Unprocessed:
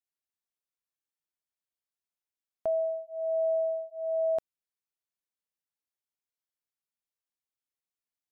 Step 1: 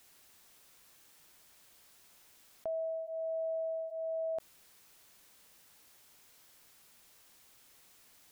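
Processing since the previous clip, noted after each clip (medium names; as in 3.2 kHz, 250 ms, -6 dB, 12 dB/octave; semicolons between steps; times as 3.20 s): level flattener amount 70%; trim -8.5 dB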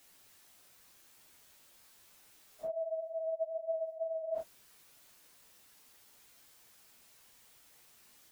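phase randomisation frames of 100 ms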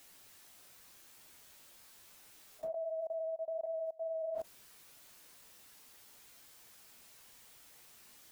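level held to a coarse grid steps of 22 dB; trim +6.5 dB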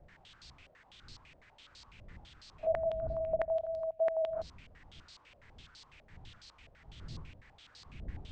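knee-point frequency compression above 1.3 kHz 1.5:1; wind noise 93 Hz -51 dBFS; step-sequenced low-pass 12 Hz 610–4400 Hz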